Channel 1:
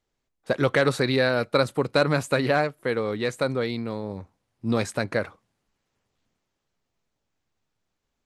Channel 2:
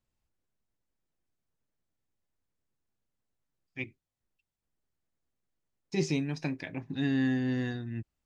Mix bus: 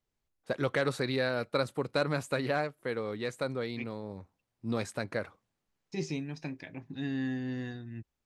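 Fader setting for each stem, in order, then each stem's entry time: −8.5, −5.5 decibels; 0.00, 0.00 seconds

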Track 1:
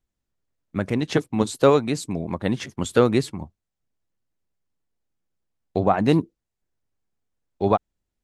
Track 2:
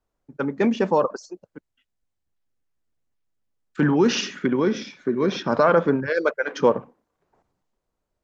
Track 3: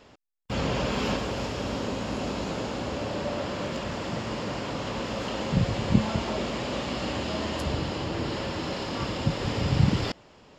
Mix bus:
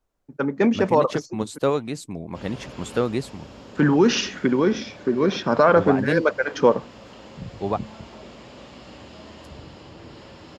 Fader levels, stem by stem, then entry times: −5.5, +1.5, −12.5 decibels; 0.00, 0.00, 1.85 seconds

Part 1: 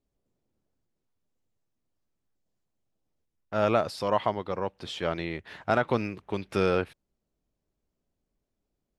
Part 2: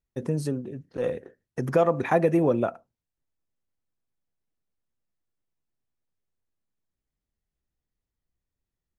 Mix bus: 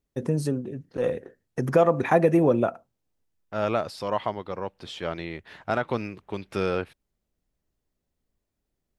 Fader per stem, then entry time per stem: −1.5, +2.0 decibels; 0.00, 0.00 seconds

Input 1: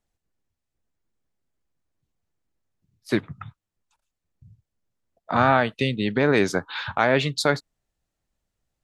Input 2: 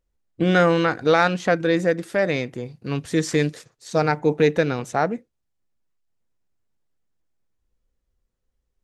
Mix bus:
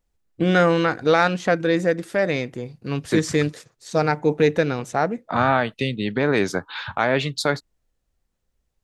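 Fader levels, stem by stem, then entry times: −0.5, 0.0 decibels; 0.00, 0.00 seconds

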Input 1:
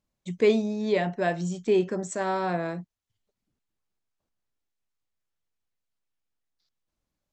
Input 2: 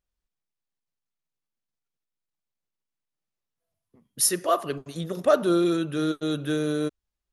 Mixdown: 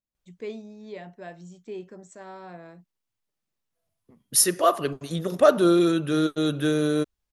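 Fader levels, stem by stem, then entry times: −14.5, +3.0 decibels; 0.00, 0.15 seconds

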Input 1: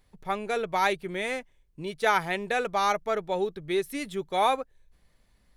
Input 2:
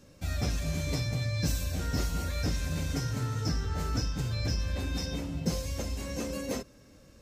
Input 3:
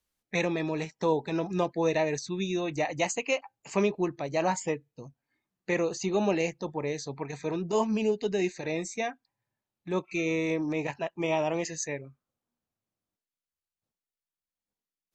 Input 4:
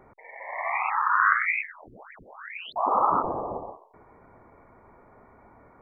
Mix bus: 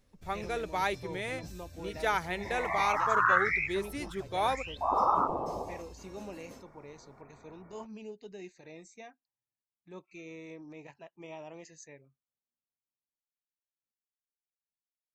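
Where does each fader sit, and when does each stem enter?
−6.0, −17.5, −17.5, −4.0 decibels; 0.00, 0.00, 0.00, 2.05 seconds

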